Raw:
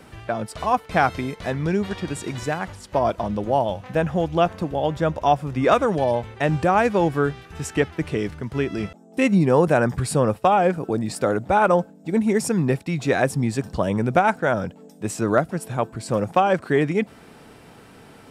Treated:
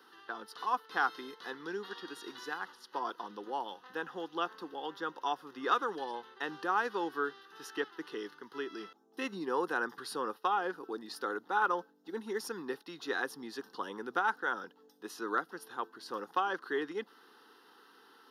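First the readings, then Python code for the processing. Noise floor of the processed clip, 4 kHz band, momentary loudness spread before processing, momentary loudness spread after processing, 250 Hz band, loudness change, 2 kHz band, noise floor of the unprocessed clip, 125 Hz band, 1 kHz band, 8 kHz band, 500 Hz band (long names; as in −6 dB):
−64 dBFS, −8.0 dB, 10 LU, 12 LU, −20.0 dB, −14.5 dB, −8.5 dB, −48 dBFS, −35.5 dB, −12.0 dB, −17.5 dB, −18.0 dB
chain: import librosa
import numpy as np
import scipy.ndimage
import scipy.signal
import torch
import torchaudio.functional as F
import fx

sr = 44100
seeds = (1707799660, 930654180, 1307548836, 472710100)

y = scipy.signal.sosfilt(scipy.signal.butter(4, 360.0, 'highpass', fs=sr, output='sos'), x)
y = fx.fixed_phaser(y, sr, hz=2300.0, stages=6)
y = y * librosa.db_to_amplitude(-6.5)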